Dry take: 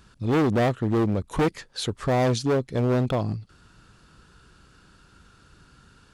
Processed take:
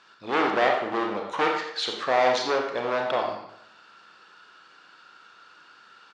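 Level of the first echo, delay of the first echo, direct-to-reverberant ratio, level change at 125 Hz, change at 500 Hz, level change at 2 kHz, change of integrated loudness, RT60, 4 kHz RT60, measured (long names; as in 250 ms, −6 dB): −10.5 dB, 86 ms, 1.0 dB, −23.0 dB, 0.0 dB, +6.5 dB, −0.5 dB, 0.75 s, 0.60 s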